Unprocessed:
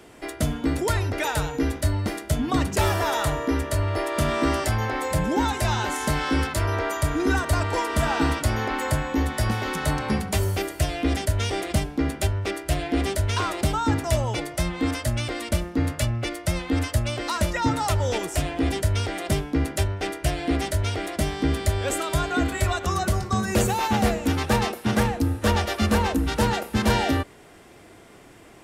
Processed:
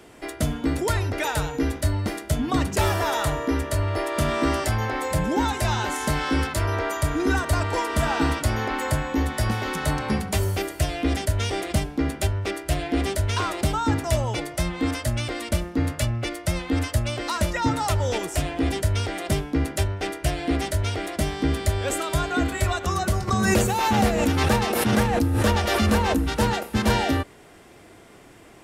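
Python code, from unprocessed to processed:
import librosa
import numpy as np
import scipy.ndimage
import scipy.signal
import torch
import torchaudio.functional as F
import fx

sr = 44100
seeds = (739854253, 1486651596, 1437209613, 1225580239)

y = fx.pre_swell(x, sr, db_per_s=26.0, at=(23.27, 26.17), fade=0.02)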